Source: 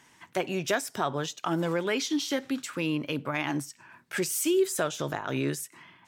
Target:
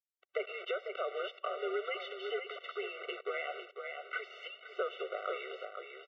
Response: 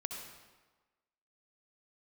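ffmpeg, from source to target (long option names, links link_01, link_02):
-filter_complex "[0:a]acrusher=bits=5:mix=0:aa=0.000001,aecho=1:1:496:0.355,asplit=2[link_01][link_02];[1:a]atrim=start_sample=2205,afade=type=out:start_time=0.24:duration=0.01,atrim=end_sample=11025[link_03];[link_02][link_03]afir=irnorm=-1:irlink=0,volume=-20.5dB[link_04];[link_01][link_04]amix=inputs=2:normalize=0,highpass=frequency=260:width_type=q:width=0.5412,highpass=frequency=260:width_type=q:width=1.307,lowpass=frequency=3200:width_type=q:width=0.5176,lowpass=frequency=3200:width_type=q:width=0.7071,lowpass=frequency=3200:width_type=q:width=1.932,afreqshift=-110,acompressor=threshold=-29dB:ratio=6,afftfilt=real='re*eq(mod(floor(b*sr/1024/380),2),1)':imag='im*eq(mod(floor(b*sr/1024/380),2),1)':win_size=1024:overlap=0.75"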